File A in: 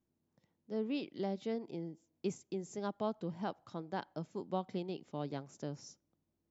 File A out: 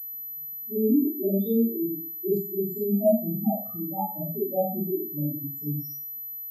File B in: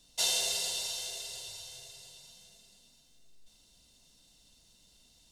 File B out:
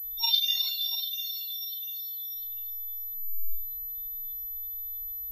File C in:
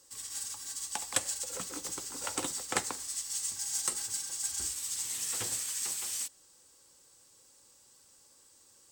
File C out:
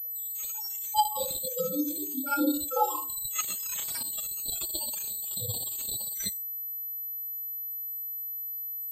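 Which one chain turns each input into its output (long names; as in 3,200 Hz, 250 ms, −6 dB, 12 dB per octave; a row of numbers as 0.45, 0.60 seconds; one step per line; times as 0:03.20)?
spectral peaks only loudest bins 2
four-comb reverb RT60 0.4 s, combs from 27 ms, DRR −10 dB
switching amplifier with a slow clock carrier 12,000 Hz
normalise the peak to −12 dBFS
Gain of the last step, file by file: +7.5, +7.5, +12.0 decibels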